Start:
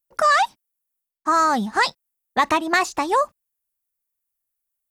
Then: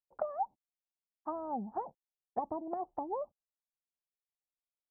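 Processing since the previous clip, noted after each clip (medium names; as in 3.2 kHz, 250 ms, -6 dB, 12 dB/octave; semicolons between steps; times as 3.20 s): four-pole ladder low-pass 920 Hz, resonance 60%; low-pass that closes with the level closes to 560 Hz, closed at -26 dBFS; trim -5.5 dB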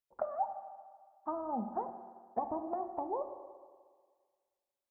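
reverberation RT60 1.7 s, pre-delay 4 ms, DRR 6.5 dB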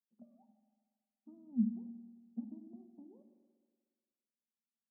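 Butterworth band-pass 220 Hz, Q 4.8; trim +9 dB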